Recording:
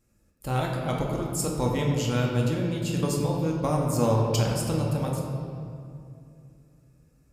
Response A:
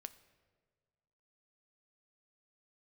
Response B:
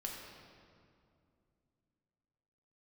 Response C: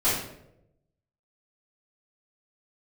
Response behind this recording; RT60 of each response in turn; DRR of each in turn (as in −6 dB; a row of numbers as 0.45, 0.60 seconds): B; 1.7, 2.5, 0.85 seconds; 11.5, −2.0, −13.5 decibels